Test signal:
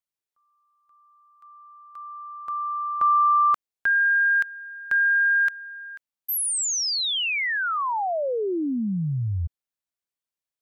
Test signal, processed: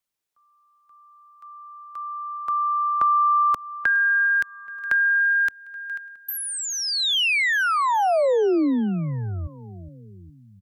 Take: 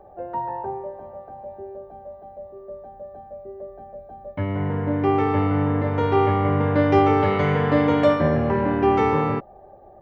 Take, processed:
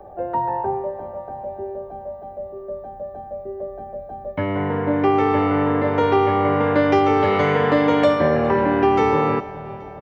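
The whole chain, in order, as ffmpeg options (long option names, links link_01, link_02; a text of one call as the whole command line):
ffmpeg -i in.wav -filter_complex "[0:a]aecho=1:1:414|828|1242|1656:0.0891|0.049|0.027|0.0148,acrossover=split=250|640|3600[link_01][link_02][link_03][link_04];[link_01]acompressor=threshold=-36dB:ratio=4[link_05];[link_02]acompressor=threshold=-24dB:ratio=4[link_06];[link_03]acompressor=threshold=-27dB:ratio=4[link_07];[link_04]acompressor=threshold=-38dB:ratio=4[link_08];[link_05][link_06][link_07][link_08]amix=inputs=4:normalize=0,volume=6.5dB" out.wav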